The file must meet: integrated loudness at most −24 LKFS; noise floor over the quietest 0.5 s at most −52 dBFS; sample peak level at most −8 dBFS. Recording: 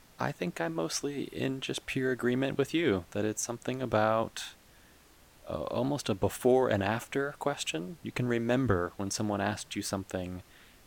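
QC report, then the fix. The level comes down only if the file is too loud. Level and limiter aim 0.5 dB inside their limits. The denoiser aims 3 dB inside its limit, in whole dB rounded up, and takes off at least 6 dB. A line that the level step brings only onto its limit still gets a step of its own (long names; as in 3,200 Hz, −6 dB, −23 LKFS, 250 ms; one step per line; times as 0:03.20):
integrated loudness −31.5 LKFS: in spec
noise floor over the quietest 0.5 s −59 dBFS: in spec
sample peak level −13.0 dBFS: in spec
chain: no processing needed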